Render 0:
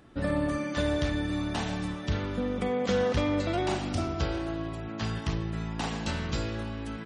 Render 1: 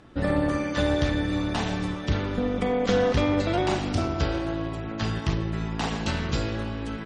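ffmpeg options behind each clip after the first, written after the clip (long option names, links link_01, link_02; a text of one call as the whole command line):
ffmpeg -i in.wav -af "lowpass=7800,tremolo=f=210:d=0.519,volume=6.5dB" out.wav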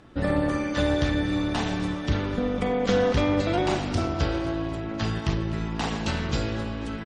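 ffmpeg -i in.wav -af "aecho=1:1:250|500|750|1000|1250:0.15|0.0838|0.0469|0.0263|0.0147" out.wav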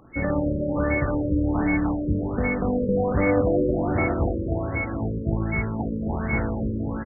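ffmpeg -i in.wav -af "aeval=exprs='val(0)+0.0316*sin(2*PI*2200*n/s)':channel_layout=same,aecho=1:1:300|540|732|885.6|1008:0.631|0.398|0.251|0.158|0.1,afftfilt=real='re*lt(b*sr/1024,580*pow(2300/580,0.5+0.5*sin(2*PI*1.3*pts/sr)))':imag='im*lt(b*sr/1024,580*pow(2300/580,0.5+0.5*sin(2*PI*1.3*pts/sr)))':win_size=1024:overlap=0.75" out.wav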